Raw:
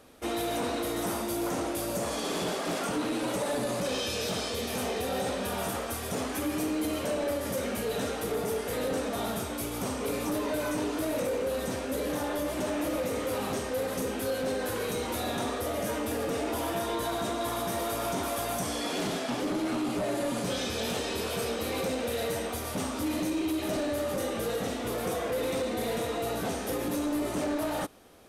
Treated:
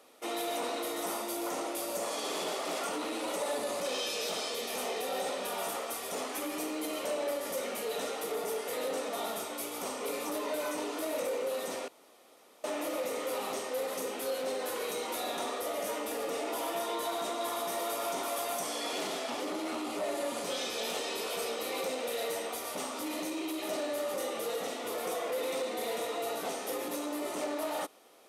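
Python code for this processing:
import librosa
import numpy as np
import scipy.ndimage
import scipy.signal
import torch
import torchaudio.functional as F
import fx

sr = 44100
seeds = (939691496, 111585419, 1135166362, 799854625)

y = fx.edit(x, sr, fx.room_tone_fill(start_s=11.88, length_s=0.76), tone=tone)
y = scipy.signal.sosfilt(scipy.signal.butter(2, 410.0, 'highpass', fs=sr, output='sos'), y)
y = fx.notch(y, sr, hz=1600.0, q=7.9)
y = y * librosa.db_to_amplitude(-1.5)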